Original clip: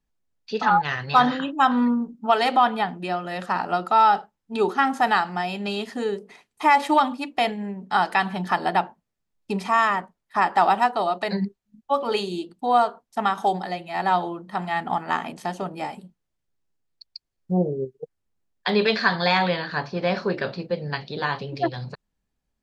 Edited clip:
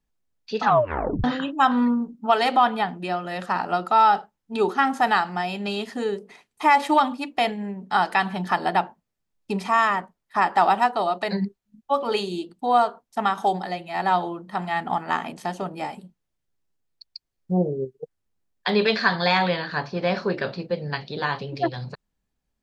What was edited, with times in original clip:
0:00.65: tape stop 0.59 s

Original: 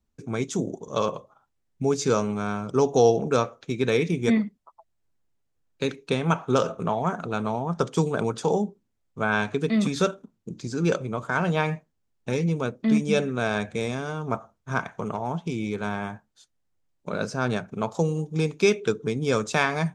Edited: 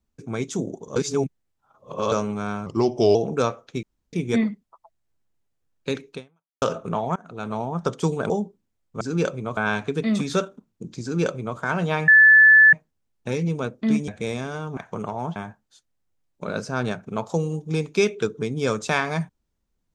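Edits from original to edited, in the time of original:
0:00.96–0:02.12: reverse
0:02.66–0:03.09: play speed 88%
0:03.77–0:04.07: fill with room tone
0:06.07–0:06.56: fade out exponential
0:07.10–0:07.54: fade in, from −23.5 dB
0:08.24–0:08.52: remove
0:10.68–0:11.24: duplicate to 0:09.23
0:11.74: insert tone 1,740 Hz −8.5 dBFS 0.65 s
0:13.09–0:13.62: remove
0:14.31–0:14.83: remove
0:15.42–0:16.01: remove

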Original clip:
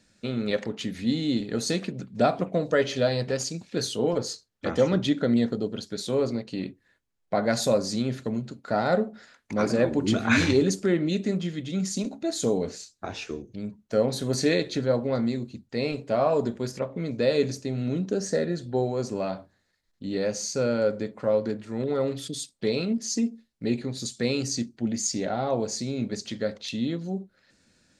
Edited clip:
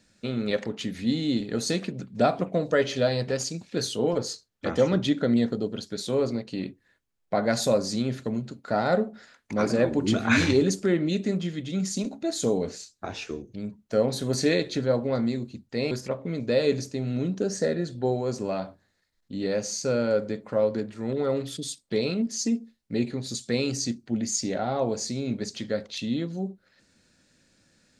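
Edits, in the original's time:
0:15.91–0:16.62: remove

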